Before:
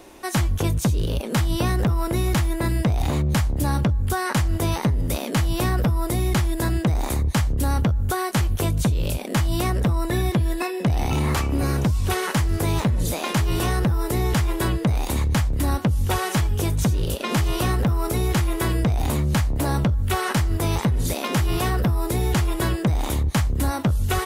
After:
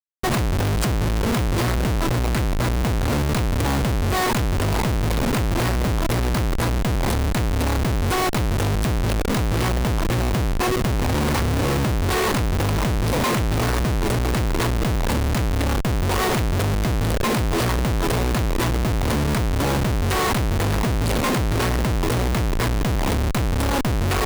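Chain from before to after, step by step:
EQ curve with evenly spaced ripples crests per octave 0.94, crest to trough 9 dB
comparator with hysteresis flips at −26 dBFS

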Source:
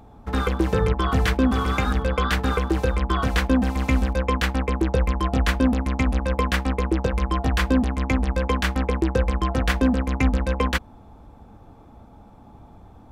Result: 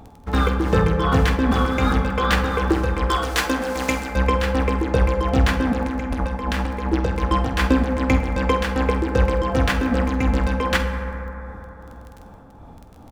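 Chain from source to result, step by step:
running median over 3 samples
0:03.07–0:04.15: bass and treble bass −13 dB, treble +9 dB
0:05.72–0:06.93: compressor whose output falls as the input rises −26 dBFS, ratio −1
amplitude tremolo 2.6 Hz, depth 54%
surface crackle 13 per second −36 dBFS
double-tracking delay 48 ms −13 dB
convolution reverb RT60 3.7 s, pre-delay 8 ms, DRR 5 dB
level +4 dB

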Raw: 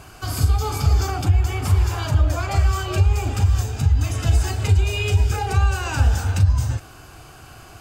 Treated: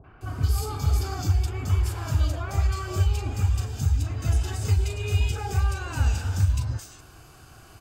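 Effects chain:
three-band delay without the direct sound lows, mids, highs 40/210 ms, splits 720/2,300 Hz
level −5.5 dB

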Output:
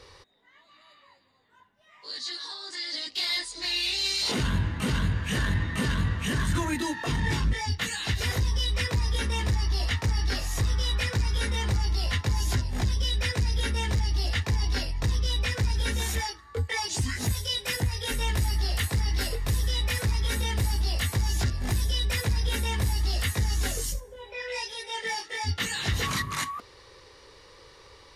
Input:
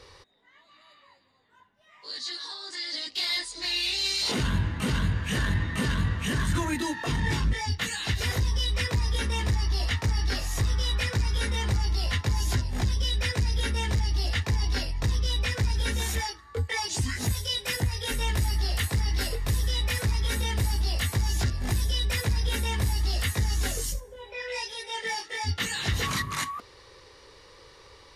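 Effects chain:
hard clipping −18 dBFS, distortion −33 dB

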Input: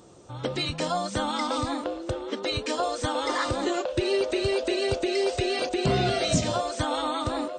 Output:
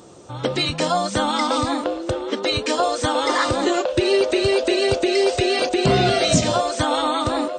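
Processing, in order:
low-shelf EQ 77 Hz −8 dB
level +7.5 dB

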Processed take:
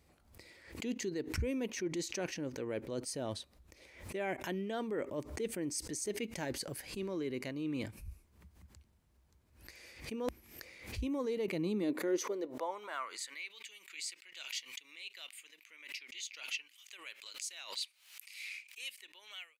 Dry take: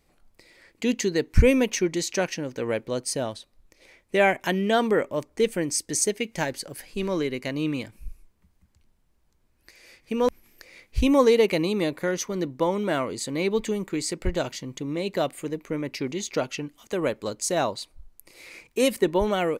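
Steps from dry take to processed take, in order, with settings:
fade-out on the ending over 1.06 s
dynamic equaliser 330 Hz, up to +6 dB, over −35 dBFS, Q 1.6
reversed playback
downward compressor 4 to 1, threshold −36 dBFS, peak gain reduction 21.5 dB
reversed playback
high-pass filter sweep 65 Hz → 2,600 Hz, 0:11.05–0:13.52
background raised ahead of every attack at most 98 dB per second
level −2.5 dB

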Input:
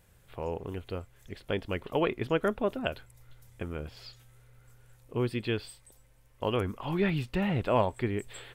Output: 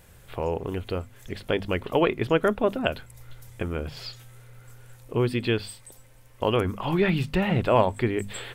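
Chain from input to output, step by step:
mains-hum notches 50/100/150/200/250 Hz
in parallel at −2 dB: downward compressor, threshold −41 dBFS, peak gain reduction 19 dB
on the sum: level +5 dB

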